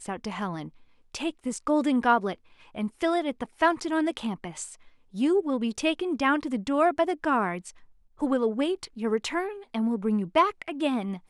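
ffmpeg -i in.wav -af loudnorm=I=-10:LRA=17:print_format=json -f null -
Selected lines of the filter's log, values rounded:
"input_i" : "-27.4",
"input_tp" : "-9.1",
"input_lra" : "1.3",
"input_thresh" : "-37.8",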